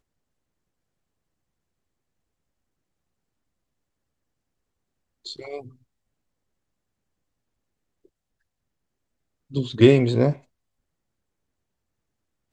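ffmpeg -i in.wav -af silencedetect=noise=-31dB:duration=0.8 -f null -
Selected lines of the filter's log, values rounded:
silence_start: 0.00
silence_end: 5.26 | silence_duration: 5.26
silence_start: 5.60
silence_end: 9.54 | silence_duration: 3.93
silence_start: 10.33
silence_end: 12.53 | silence_duration: 2.20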